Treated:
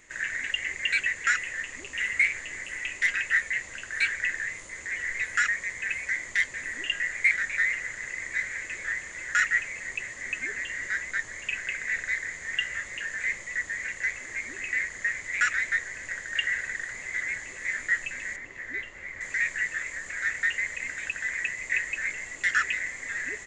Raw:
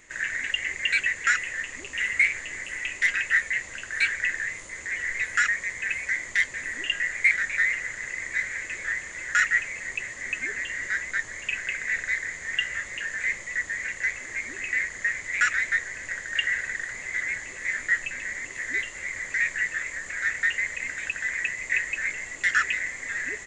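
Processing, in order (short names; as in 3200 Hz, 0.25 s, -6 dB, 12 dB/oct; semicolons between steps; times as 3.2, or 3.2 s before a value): 18.36–19.21 tape spacing loss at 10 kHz 21 dB; gain -2 dB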